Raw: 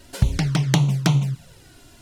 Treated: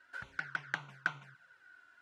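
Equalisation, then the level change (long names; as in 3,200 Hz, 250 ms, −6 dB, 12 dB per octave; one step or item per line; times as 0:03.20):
resonant band-pass 1,500 Hz, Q 9.7
+3.5 dB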